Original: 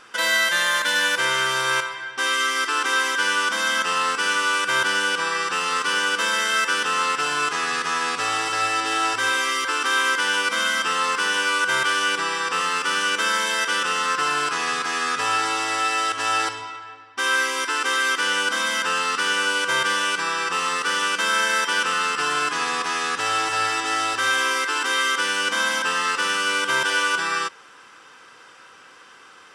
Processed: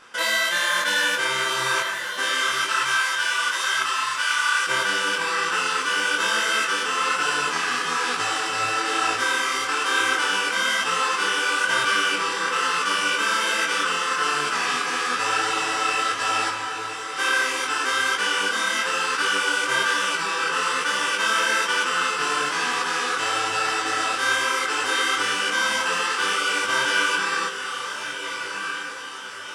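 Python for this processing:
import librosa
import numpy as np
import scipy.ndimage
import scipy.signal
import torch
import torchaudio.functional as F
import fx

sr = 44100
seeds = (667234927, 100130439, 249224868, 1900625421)

y = fx.highpass(x, sr, hz=910.0, slope=24, at=(2.51, 4.67))
y = fx.echo_diffused(y, sr, ms=1385, feedback_pct=53, wet_db=-8.0)
y = fx.detune_double(y, sr, cents=38)
y = y * 10.0 ** (2.5 / 20.0)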